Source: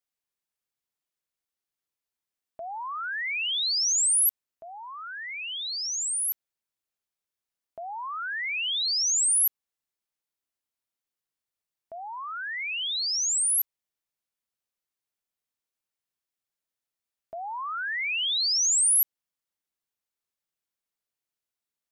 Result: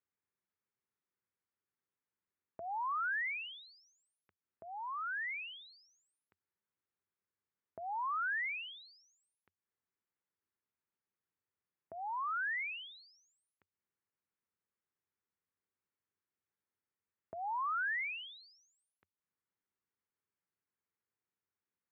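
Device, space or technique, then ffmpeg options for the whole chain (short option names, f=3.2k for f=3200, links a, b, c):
bass amplifier: -af "acompressor=threshold=-33dB:ratio=6,highpass=87,equalizer=f=90:t=q:w=4:g=10,equalizer=f=190:t=q:w=4:g=4,equalizer=f=390:t=q:w=4:g=4,equalizer=f=660:t=q:w=4:g=-9,lowpass=f=2.1k:w=0.5412,lowpass=f=2.1k:w=1.3066"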